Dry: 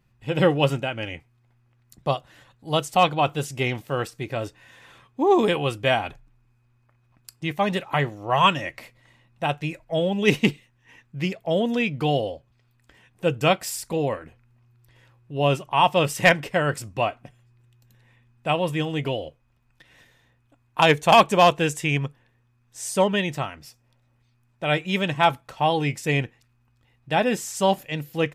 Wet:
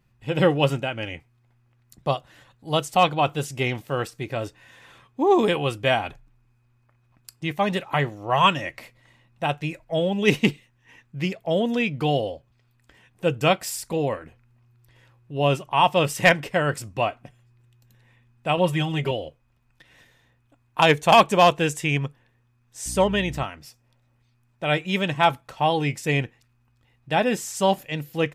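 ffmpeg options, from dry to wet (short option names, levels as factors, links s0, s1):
-filter_complex "[0:a]asettb=1/sr,asplit=3[s0][s1][s2];[s0]atrim=end=18.574[s3];[s1]atrim=start=18.57:end=19.11,asetpts=PTS-STARTPTS,afade=t=in:d=0.004:c=qsin,afade=t=out:st=0.536:d=0.004:c=qsin,aecho=1:1:5.3:0.83,atrim=end_sample=23814[s4];[s2]atrim=start=19.106[s5];[s3][s4]acrossfade=d=0.004:c1=hsin:c2=qsin[s6];[s6][s5]acrossfade=d=0.004:c1=qsin:c2=hsin,asettb=1/sr,asplit=3[s7][s8][s9];[s7]atrim=end=22.864[s10];[s8]atrim=start=22.86:end=23.44,asetpts=PTS-STARTPTS,afade=t=in:d=0.004:c=qsin,afade=t=out:st=0.576:d=0.004:c=qsin,aeval=exprs='val(0)+0.0178*(sin(2*PI*60*n/s)+sin(2*PI*2*60*n/s)/2+sin(2*PI*3*60*n/s)/3+sin(2*PI*4*60*n/s)/4+sin(2*PI*5*60*n/s)/5)':c=same[s11];[s9]atrim=start=23.436[s12];[s10][s11]acrossfade=d=0.004:c1=hsin:c2=qsin[s13];[s13][s12]acrossfade=d=0.004:c1=qsin:c2=hsin"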